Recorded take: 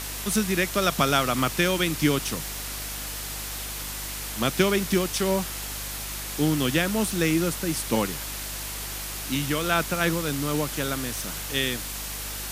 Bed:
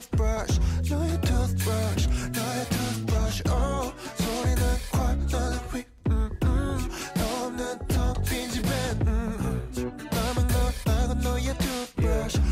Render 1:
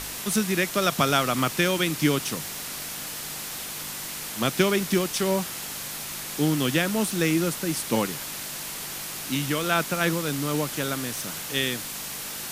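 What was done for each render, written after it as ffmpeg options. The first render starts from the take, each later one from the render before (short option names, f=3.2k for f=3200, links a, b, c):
-af "bandreject=f=50:t=h:w=4,bandreject=f=100:t=h:w=4"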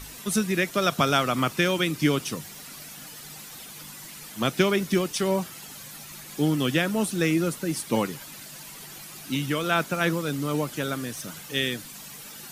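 -af "afftdn=nr=11:nf=-35"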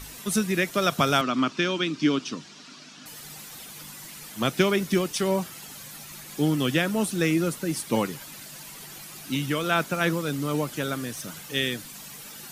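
-filter_complex "[0:a]asettb=1/sr,asplit=3[a][b][c];[a]atrim=end=1.214[d];[b]atrim=start=1.21:end=3.06,asetpts=PTS-STARTPTS,afade=t=in:d=0.004:c=qsin,afade=t=out:st=1.846:d=0.004:c=qsin,highpass=210,equalizer=f=260:t=q:w=4:g=6,equalizer=f=510:t=q:w=4:g=-7,equalizer=f=790:t=q:w=4:g=-6,equalizer=f=2k:t=q:w=4:g=-6,lowpass=f=5.9k:w=0.5412,lowpass=f=5.9k:w=1.3066[e];[c]atrim=start=3.056[f];[d][e]acrossfade=d=0.004:c1=hsin:c2=qsin[g];[g][f]acrossfade=d=0.004:c1=qsin:c2=hsin"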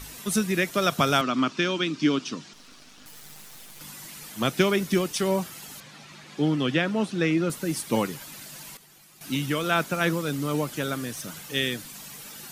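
-filter_complex "[0:a]asettb=1/sr,asplit=3[a][b][c];[a]atrim=end=2.534[d];[b]atrim=start=2.53:end=3.81,asetpts=PTS-STARTPTS,afade=t=in:d=0.004:c=qsin,afade=t=out:st=1.276:d=0.004:c=qsin,aeval=exprs='max(val(0),0)':c=same[e];[c]atrim=start=3.806[f];[d][e]acrossfade=d=0.004:c1=hsin:c2=qsin[g];[g][f]acrossfade=d=0.004:c1=qsin:c2=hsin,asettb=1/sr,asplit=3[h][i][j];[h]atrim=end=5.804[k];[i]atrim=start=5.8:end=7.5,asetpts=PTS-STARTPTS,afade=t=in:d=0.004:c=qsin,afade=t=out:st=1.696:d=0.004:c=qsin,highpass=110,lowpass=4.3k[l];[j]atrim=start=7.496[m];[k][l]acrossfade=d=0.004:c1=hsin:c2=qsin[n];[n][m]acrossfade=d=0.004:c1=qsin:c2=hsin,asplit=3[o][p][q];[o]atrim=end=8.772[r];[p]atrim=start=8.768:end=9.212,asetpts=PTS-STARTPTS,volume=-12dB[s];[q]atrim=start=9.208[t];[r][s]acrossfade=d=0.004:c1=hsin:c2=hsin[u];[u][t]acrossfade=d=0.004:c1=hsin:c2=hsin"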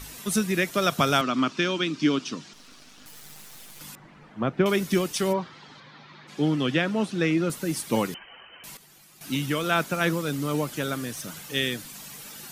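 -filter_complex "[0:a]asettb=1/sr,asplit=3[a][b][c];[a]atrim=end=3.954[d];[b]atrim=start=3.95:end=4.66,asetpts=PTS-STARTPTS,afade=t=in:d=0.004:c=qsin,afade=t=out:st=0.706:d=0.004:c=qsin,lowpass=1.4k[e];[c]atrim=start=4.656[f];[d][e]acrossfade=d=0.004:c1=hsin:c2=qsin[g];[g][f]acrossfade=d=0.004:c1=qsin:c2=hsin,asplit=3[h][i][j];[h]afade=t=out:st=5.32:d=0.02[k];[i]highpass=100,equalizer=f=200:t=q:w=4:g=-4,equalizer=f=670:t=q:w=4:g=-4,equalizer=f=1k:t=q:w=4:g=4,equalizer=f=2.7k:t=q:w=4:g=-7,lowpass=f=4.1k:w=0.5412,lowpass=f=4.1k:w=1.3066,afade=t=in:st=5.32:d=0.02,afade=t=out:st=6.27:d=0.02[l];[j]afade=t=in:st=6.27:d=0.02[m];[k][l][m]amix=inputs=3:normalize=0,asettb=1/sr,asplit=3[n][o][p];[n]atrim=end=8.144[q];[o]atrim=start=8.14:end=8.64,asetpts=PTS-STARTPTS,afade=t=in:d=0.004:c=qsin,afade=t=out:st=0.496:d=0.004:c=qsin,lowpass=f=2.7k:t=q:w=0.5098,lowpass=f=2.7k:t=q:w=0.6013,lowpass=f=2.7k:t=q:w=0.9,lowpass=f=2.7k:t=q:w=2.563,afreqshift=-3200[r];[p]atrim=start=8.636[s];[q][r]acrossfade=d=0.004:c1=hsin:c2=qsin[t];[t][s]acrossfade=d=0.004:c1=qsin:c2=hsin"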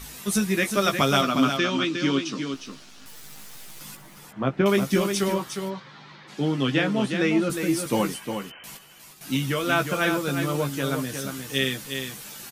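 -filter_complex "[0:a]asplit=2[a][b];[b]adelay=15,volume=-5.5dB[c];[a][c]amix=inputs=2:normalize=0,aecho=1:1:358:0.447"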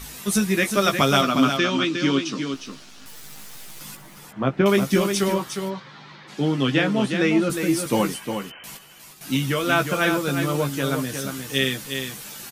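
-af "volume=2.5dB"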